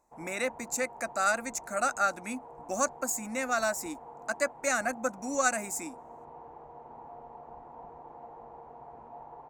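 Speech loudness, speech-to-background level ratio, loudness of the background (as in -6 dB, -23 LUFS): -31.0 LUFS, 17.5 dB, -48.5 LUFS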